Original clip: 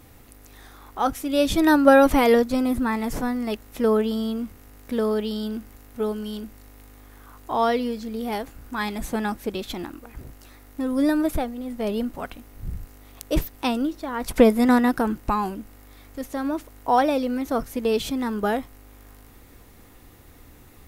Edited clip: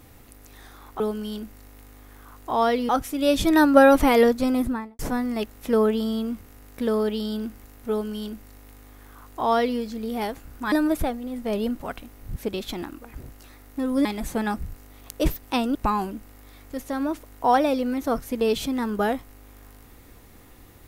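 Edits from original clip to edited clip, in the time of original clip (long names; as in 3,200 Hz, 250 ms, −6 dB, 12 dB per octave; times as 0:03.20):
0:02.70–0:03.10: fade out and dull
0:06.01–0:07.90: duplicate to 0:01.00
0:08.83–0:09.37: swap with 0:11.06–0:12.70
0:13.86–0:15.19: remove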